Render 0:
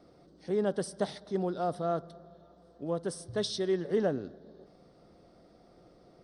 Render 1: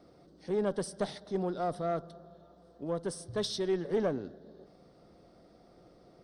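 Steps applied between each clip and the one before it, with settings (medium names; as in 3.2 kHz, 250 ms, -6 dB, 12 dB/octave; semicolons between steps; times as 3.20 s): single-diode clipper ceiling -21 dBFS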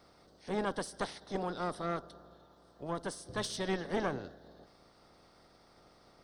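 spectral peaks clipped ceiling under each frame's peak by 16 dB; trim -3 dB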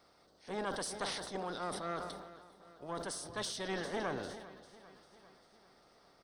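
bass shelf 320 Hz -7.5 dB; feedback delay 398 ms, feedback 60%, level -17 dB; decay stretcher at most 41 dB/s; trim -2.5 dB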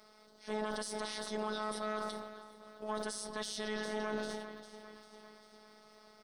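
robot voice 214 Hz; peak limiter -31 dBFS, peak gain reduction 9.5 dB; on a send at -18.5 dB: reverberation RT60 0.55 s, pre-delay 4 ms; on the sum: trim +7 dB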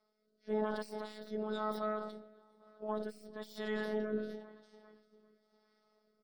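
tracing distortion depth 0.11 ms; rotary cabinet horn 1 Hz; spectral contrast expander 1.5:1; trim +2.5 dB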